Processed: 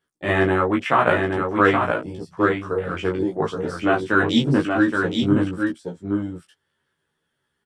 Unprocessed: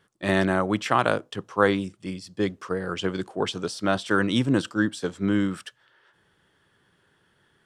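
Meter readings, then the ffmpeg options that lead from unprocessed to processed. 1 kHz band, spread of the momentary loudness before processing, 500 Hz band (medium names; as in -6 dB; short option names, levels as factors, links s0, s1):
+6.0 dB, 9 LU, +5.0 dB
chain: -filter_complex "[0:a]afwtdn=0.0224,highshelf=f=6300:g=7,flanger=delay=16:depth=6:speed=0.81,asplit=2[s0][s1];[s1]adelay=13,volume=0.708[s2];[s0][s2]amix=inputs=2:normalize=0,asplit=2[s3][s4];[s4]aecho=0:1:822:0.596[s5];[s3][s5]amix=inputs=2:normalize=0,volume=1.88"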